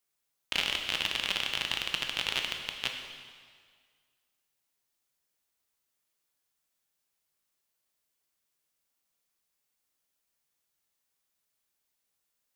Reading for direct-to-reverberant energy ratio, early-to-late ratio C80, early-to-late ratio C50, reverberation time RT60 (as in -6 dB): 3.0 dB, 6.0 dB, 5.0 dB, 1.8 s